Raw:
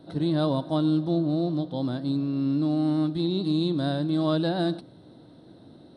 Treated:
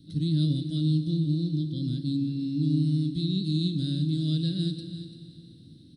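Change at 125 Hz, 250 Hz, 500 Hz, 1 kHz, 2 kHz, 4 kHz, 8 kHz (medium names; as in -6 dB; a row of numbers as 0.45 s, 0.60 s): +4.0 dB, -3.0 dB, -13.5 dB, under -35 dB, under -15 dB, +0.5 dB, no reading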